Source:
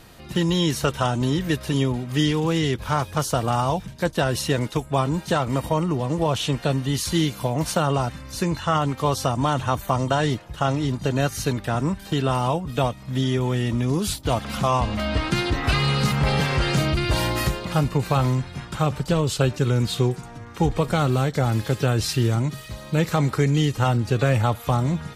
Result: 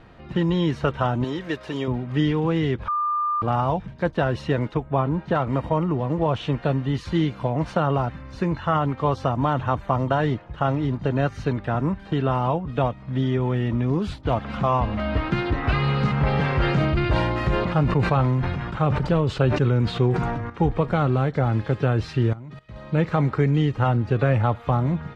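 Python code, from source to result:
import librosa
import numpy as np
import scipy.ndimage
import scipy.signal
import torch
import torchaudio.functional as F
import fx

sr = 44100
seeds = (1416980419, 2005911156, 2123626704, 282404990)

y = fx.bass_treble(x, sr, bass_db=-13, treble_db=7, at=(1.24, 1.88))
y = fx.lowpass(y, sr, hz=2600.0, slope=6, at=(4.74, 5.35))
y = fx.sustainer(y, sr, db_per_s=29.0, at=(16.4, 20.5))
y = fx.level_steps(y, sr, step_db=19, at=(22.33, 22.76))
y = fx.edit(y, sr, fx.bleep(start_s=2.88, length_s=0.54, hz=1200.0, db=-20.0), tone=tone)
y = scipy.signal.sosfilt(scipy.signal.butter(2, 2100.0, 'lowpass', fs=sr, output='sos'), y)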